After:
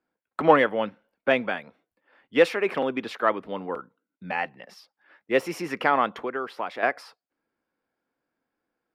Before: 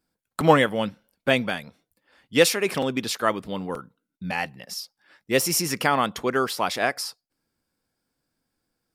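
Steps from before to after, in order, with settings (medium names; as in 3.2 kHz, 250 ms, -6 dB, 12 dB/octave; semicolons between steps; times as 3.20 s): 6.19–6.83 s: compression 2.5:1, threshold -30 dBFS, peak gain reduction 8 dB; three-band isolator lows -15 dB, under 250 Hz, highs -24 dB, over 2.8 kHz; Chebyshev shaper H 5 -32 dB, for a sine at -3 dBFS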